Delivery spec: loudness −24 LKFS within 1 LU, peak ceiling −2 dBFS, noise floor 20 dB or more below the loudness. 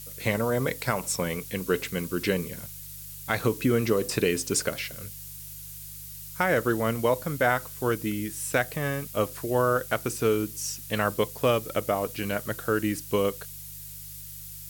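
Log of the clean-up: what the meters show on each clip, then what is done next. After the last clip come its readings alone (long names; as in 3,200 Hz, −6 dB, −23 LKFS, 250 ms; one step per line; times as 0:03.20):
mains hum 50 Hz; hum harmonics up to 150 Hz; level of the hum −47 dBFS; background noise floor −42 dBFS; target noise floor −48 dBFS; integrated loudness −27.5 LKFS; sample peak −9.5 dBFS; target loudness −24.0 LKFS
→ hum removal 50 Hz, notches 3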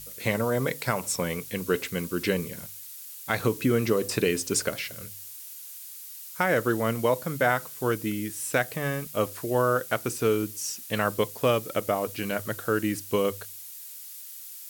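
mains hum none found; background noise floor −43 dBFS; target noise floor −48 dBFS
→ noise reduction from a noise print 6 dB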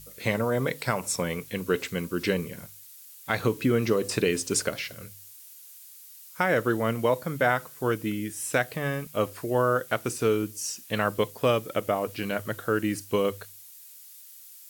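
background noise floor −49 dBFS; integrated loudness −27.5 LKFS; sample peak −9.5 dBFS; target loudness −24.0 LKFS
→ level +3.5 dB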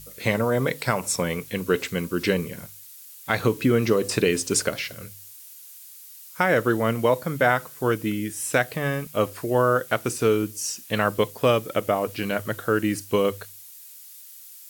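integrated loudness −24.0 LKFS; sample peak −6.0 dBFS; background noise floor −45 dBFS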